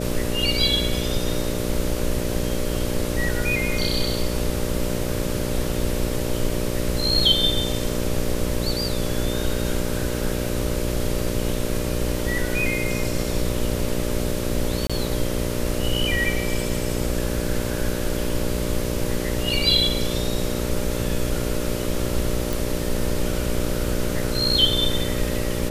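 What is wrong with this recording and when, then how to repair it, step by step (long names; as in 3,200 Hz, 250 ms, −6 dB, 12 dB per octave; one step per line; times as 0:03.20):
mains buzz 60 Hz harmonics 10 −27 dBFS
0:14.87–0:14.90: drop-out 26 ms
0:22.53: click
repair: click removal
hum removal 60 Hz, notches 10
repair the gap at 0:14.87, 26 ms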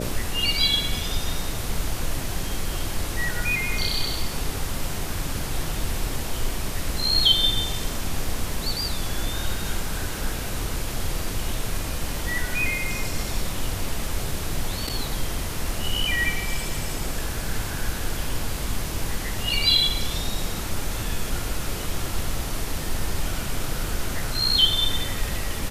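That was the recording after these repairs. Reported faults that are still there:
none of them is left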